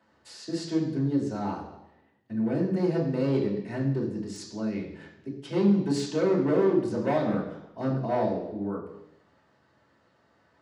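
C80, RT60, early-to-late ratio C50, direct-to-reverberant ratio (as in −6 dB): 8.5 dB, 0.90 s, 6.0 dB, −3.0 dB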